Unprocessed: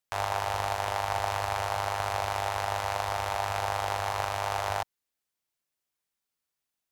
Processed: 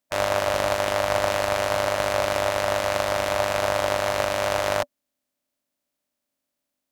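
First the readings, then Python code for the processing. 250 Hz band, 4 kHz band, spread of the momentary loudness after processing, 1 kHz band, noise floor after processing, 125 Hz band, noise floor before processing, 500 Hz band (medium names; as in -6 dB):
+14.5 dB, +7.5 dB, 1 LU, +2.5 dB, -83 dBFS, +2.0 dB, under -85 dBFS, +12.5 dB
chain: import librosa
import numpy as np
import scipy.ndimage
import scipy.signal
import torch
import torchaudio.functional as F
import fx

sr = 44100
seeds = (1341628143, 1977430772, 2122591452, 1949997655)

y = fx.spec_clip(x, sr, under_db=13)
y = fx.small_body(y, sr, hz=(260.0, 580.0), ring_ms=55, db=16)
y = F.gain(torch.from_numpy(y), 3.0).numpy()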